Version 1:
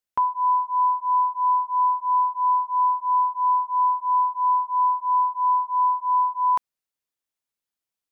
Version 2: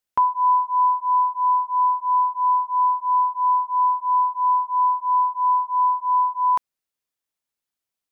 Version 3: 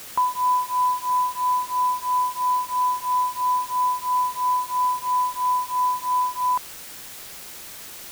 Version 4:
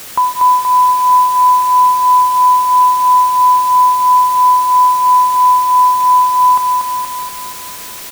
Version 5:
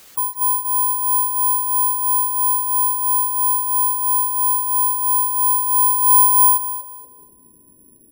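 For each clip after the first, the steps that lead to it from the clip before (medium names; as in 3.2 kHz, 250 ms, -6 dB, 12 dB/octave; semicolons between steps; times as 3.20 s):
gain riding 2 s; trim +1.5 dB
word length cut 6-bit, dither triangular; trim -3 dB
feedback delay 237 ms, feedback 58%, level -4.5 dB; trim +8.5 dB
low-pass sweep 9 kHz -> 290 Hz, 4.46–7.43 s; spectral gate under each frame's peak -20 dB strong; careless resampling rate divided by 4×, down filtered, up zero stuff; trim -15 dB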